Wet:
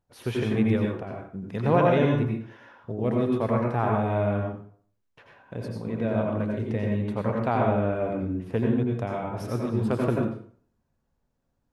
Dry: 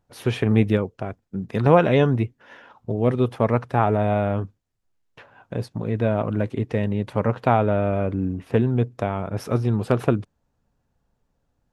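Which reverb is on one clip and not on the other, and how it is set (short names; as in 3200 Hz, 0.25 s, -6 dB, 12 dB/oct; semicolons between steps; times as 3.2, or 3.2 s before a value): plate-style reverb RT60 0.52 s, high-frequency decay 0.75×, pre-delay 75 ms, DRR -1 dB; gain -7.5 dB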